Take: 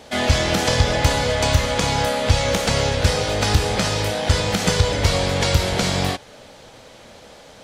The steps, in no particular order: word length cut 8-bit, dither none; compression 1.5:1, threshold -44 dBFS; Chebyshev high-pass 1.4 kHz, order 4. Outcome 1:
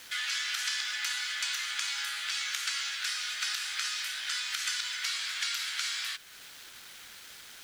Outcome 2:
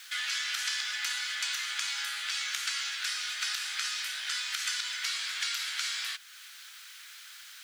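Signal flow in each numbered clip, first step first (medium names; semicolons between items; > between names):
Chebyshev high-pass > word length cut > compression; word length cut > Chebyshev high-pass > compression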